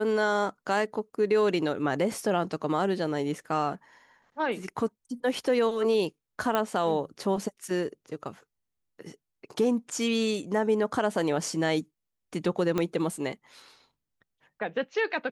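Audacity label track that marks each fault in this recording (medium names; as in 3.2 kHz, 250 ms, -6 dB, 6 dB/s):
6.550000	6.550000	pop -13 dBFS
12.780000	12.780000	pop -14 dBFS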